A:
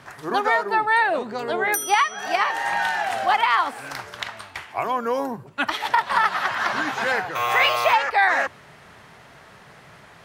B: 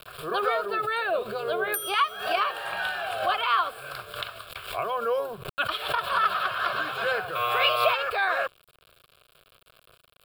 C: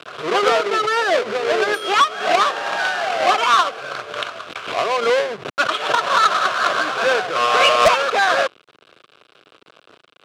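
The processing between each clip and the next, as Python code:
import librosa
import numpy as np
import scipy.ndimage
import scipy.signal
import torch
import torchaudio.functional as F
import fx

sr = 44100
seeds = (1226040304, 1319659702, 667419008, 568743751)

y1 = np.where(np.abs(x) >= 10.0 ** (-40.0 / 20.0), x, 0.0)
y1 = fx.fixed_phaser(y1, sr, hz=1300.0, stages=8)
y1 = fx.pre_swell(y1, sr, db_per_s=92.0)
y1 = y1 * librosa.db_to_amplitude(-1.0)
y2 = fx.halfwave_hold(y1, sr)
y2 = fx.bandpass_edges(y2, sr, low_hz=240.0, high_hz=4100.0)
y2 = 10.0 ** (-11.0 / 20.0) * (np.abs((y2 / 10.0 ** (-11.0 / 20.0) + 3.0) % 4.0 - 2.0) - 1.0)
y2 = y2 * librosa.db_to_amplitude(6.0)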